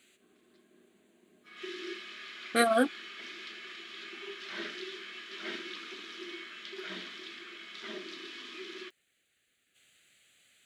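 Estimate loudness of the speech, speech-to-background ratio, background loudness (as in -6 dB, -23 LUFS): -28.0 LUFS, 14.0 dB, -42.0 LUFS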